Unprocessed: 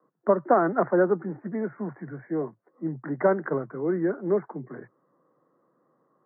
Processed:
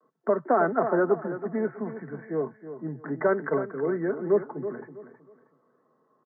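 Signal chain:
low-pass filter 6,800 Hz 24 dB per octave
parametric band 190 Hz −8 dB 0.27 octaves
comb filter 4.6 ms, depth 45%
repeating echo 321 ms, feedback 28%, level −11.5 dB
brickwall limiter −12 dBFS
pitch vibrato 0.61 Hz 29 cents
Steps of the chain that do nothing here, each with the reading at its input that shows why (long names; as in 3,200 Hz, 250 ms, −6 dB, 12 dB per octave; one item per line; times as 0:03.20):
low-pass filter 6,800 Hz: nothing at its input above 2,000 Hz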